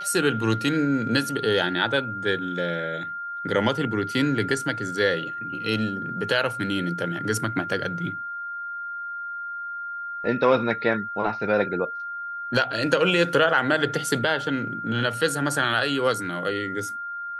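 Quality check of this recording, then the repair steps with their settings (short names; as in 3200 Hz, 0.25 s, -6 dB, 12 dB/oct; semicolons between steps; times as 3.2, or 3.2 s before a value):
tone 1400 Hz -30 dBFS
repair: notch 1400 Hz, Q 30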